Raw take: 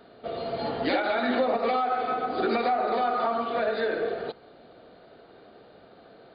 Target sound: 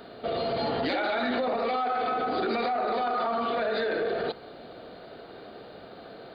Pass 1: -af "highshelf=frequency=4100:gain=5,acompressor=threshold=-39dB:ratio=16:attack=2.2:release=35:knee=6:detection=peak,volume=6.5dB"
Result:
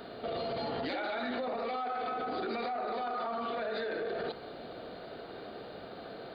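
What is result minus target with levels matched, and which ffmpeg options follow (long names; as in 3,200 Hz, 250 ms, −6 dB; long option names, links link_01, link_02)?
downward compressor: peak gain reduction +7.5 dB
-af "highshelf=frequency=4100:gain=5,acompressor=threshold=-31dB:ratio=16:attack=2.2:release=35:knee=6:detection=peak,volume=6.5dB"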